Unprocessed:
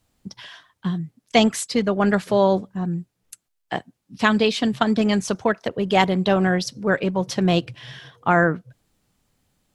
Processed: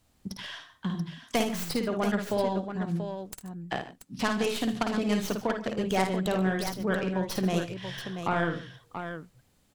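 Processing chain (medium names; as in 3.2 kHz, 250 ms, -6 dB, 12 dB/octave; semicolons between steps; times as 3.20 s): tracing distortion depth 0.15 ms; compression 2:1, threshold -34 dBFS, peak gain reduction 13.5 dB; multi-tap echo 53/79/130/147/683 ms -5.5/-17/-18/-18/-8.5 dB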